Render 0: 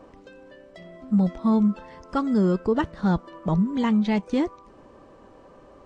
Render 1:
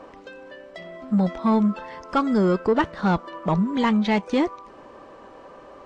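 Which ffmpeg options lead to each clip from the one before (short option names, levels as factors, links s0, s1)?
-filter_complex "[0:a]asplit=2[s0][s1];[s1]highpass=f=720:p=1,volume=3.98,asoftclip=type=tanh:threshold=0.251[s2];[s0][s2]amix=inputs=2:normalize=0,lowpass=f=3800:p=1,volume=0.501,volume=1.26"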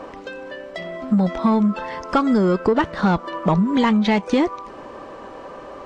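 -af "acompressor=threshold=0.0794:ratio=6,volume=2.51"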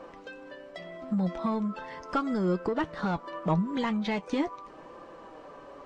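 -af "flanger=delay=5.8:depth=1.3:regen=54:speed=0.79:shape=sinusoidal,volume=0.473"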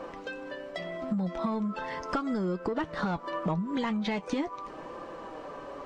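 -af "acompressor=threshold=0.0224:ratio=6,volume=1.88"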